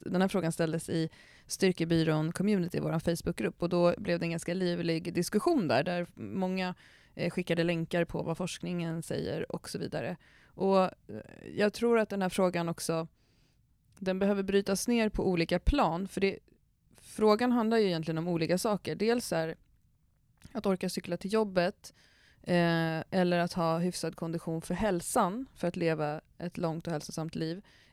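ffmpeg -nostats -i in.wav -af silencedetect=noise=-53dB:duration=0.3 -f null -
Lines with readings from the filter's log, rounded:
silence_start: 13.07
silence_end: 13.97 | silence_duration: 0.90
silence_start: 16.52
silence_end: 16.91 | silence_duration: 0.39
silence_start: 19.55
silence_end: 20.42 | silence_duration: 0.87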